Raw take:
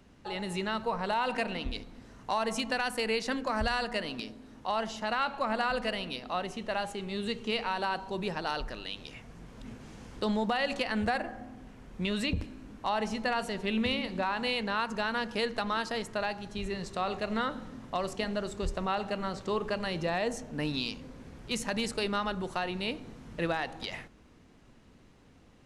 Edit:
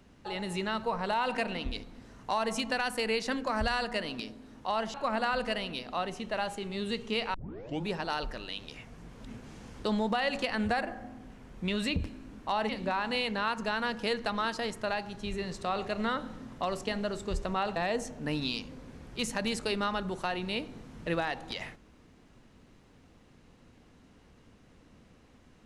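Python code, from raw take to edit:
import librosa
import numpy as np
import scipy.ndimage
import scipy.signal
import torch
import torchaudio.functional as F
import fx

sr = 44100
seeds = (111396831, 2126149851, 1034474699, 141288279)

y = fx.edit(x, sr, fx.cut(start_s=4.94, length_s=0.37),
    fx.tape_start(start_s=7.71, length_s=0.53),
    fx.cut(start_s=13.06, length_s=0.95),
    fx.cut(start_s=19.08, length_s=1.0), tone=tone)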